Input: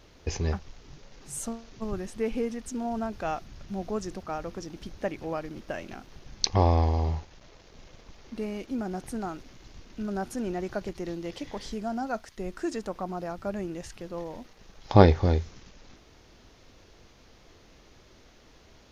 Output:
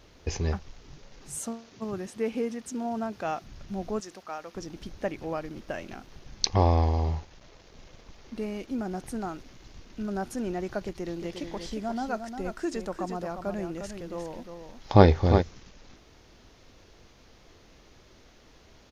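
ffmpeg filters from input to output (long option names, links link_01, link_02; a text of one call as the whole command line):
ffmpeg -i in.wav -filter_complex "[0:a]asettb=1/sr,asplit=3[link_01][link_02][link_03];[link_01]atrim=end=1.354[link_04];[link_02]atrim=start=1.35:end=3.44,asetpts=PTS-STARTPTS,afade=type=in:duration=0.004:curve=qsin,afade=type=out:start_time=2.086:duration=0.004:curve=qsin,highpass=120[link_05];[link_03]atrim=start=3.436[link_06];[link_04][link_05]acrossfade=duration=0.004:curve1=hsin:curve2=qsin[link_07];[link_07][link_06]acrossfade=duration=0.004:curve1=qsin:curve2=hsin,asettb=1/sr,asplit=3[link_08][link_09][link_10];[link_08]atrim=end=4.004[link_11];[link_09]atrim=start=4:end=4.55,asetpts=PTS-STARTPTS,afade=type=in:duration=0.004:curve=qsin,afade=type=out:start_time=0.546:duration=0.004:curve=qsin,highpass=frequency=830:poles=1[link_12];[link_10]atrim=start=4.546[link_13];[link_11][link_12]acrossfade=duration=0.004:curve1=hsin:curve2=qsin[link_14];[link_14][link_13]acrossfade=duration=0.004:curve1=qsin:curve2=hsin,asplit=3[link_15][link_16][link_17];[link_15]afade=type=out:start_time=11.15:duration=0.02[link_18];[link_16]aecho=1:1:354:0.422,afade=type=in:start_time=11.15:duration=0.02,afade=type=out:start_time=15.41:duration=0.02[link_19];[link_17]afade=type=in:start_time=15.41:duration=0.02[link_20];[link_18][link_19][link_20]amix=inputs=3:normalize=0" out.wav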